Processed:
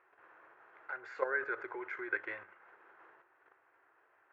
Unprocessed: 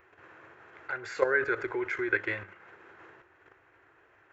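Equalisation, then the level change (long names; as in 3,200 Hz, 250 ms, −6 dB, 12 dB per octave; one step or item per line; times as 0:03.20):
resonant band-pass 980 Hz, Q 0.94
−4.5 dB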